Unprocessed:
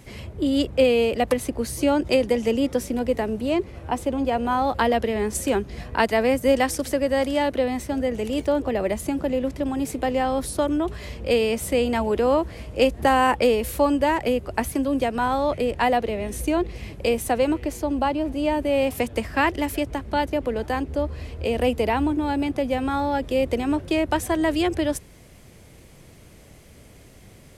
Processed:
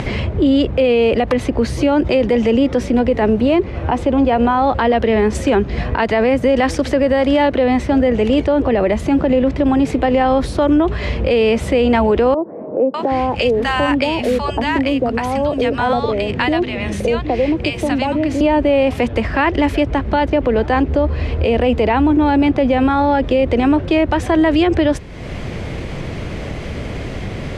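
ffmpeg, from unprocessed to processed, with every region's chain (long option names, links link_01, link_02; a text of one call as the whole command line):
ffmpeg -i in.wav -filter_complex "[0:a]asettb=1/sr,asplit=3[link_01][link_02][link_03];[link_01]atrim=end=12.344[link_04];[link_02]atrim=start=12.34:end=18.41,asetpts=PTS-STARTPTS,afade=type=in:duration=0.004:curve=qsin,afade=type=out:start_time=6.066:duration=0.004:curve=qsin,highpass=93,acrossover=split=170|3000[link_05][link_06][link_07];[link_06]acompressor=threshold=-31dB:ratio=2:attack=3.2:release=140:knee=2.83:detection=peak[link_08];[link_05][link_08][link_07]amix=inputs=3:normalize=0,acrossover=split=220|870[link_09][link_10][link_11];[link_11]adelay=600[link_12];[link_09]adelay=770[link_13];[link_13][link_10][link_12]amix=inputs=3:normalize=0,atrim=end_sample=267687[link_14];[link_03]atrim=start=18.406[link_15];[link_04][link_14]acrossfade=duration=0.004:curve1=hsin:curve2=qsin[link_16];[link_16][link_15]acrossfade=duration=0.004:curve1=qsin:curve2=hsin,acompressor=mode=upward:threshold=-27dB:ratio=2.5,lowpass=3300,alimiter=level_in=19dB:limit=-1dB:release=50:level=0:latency=1,volume=-5.5dB" out.wav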